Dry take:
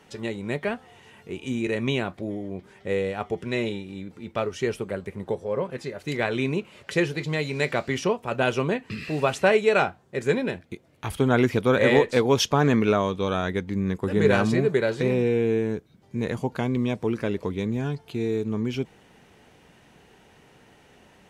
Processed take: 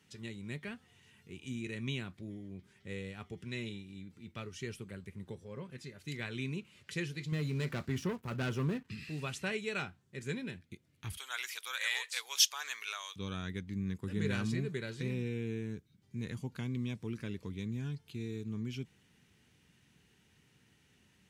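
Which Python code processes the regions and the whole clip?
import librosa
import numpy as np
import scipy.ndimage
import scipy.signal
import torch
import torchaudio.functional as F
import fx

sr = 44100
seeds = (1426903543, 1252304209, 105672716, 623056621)

y = fx.chain(x, sr, fx.band_shelf(hz=4400.0, db=-10.5, octaves=2.7),
    fx.leveller(passes=2), at=(7.32, 8.89))
y = fx.chain(y, sr, fx.highpass(hz=700.0, slope=24),
    fx.tilt_eq(slope=3.5), at=(11.17, 13.16))
y = scipy.signal.sosfilt(scipy.signal.butter(2, 79.0, 'highpass', fs=sr, output='sos'), y)
y = fx.tone_stack(y, sr, knobs='6-0-2')
y = y * 10.0 ** (6.5 / 20.0)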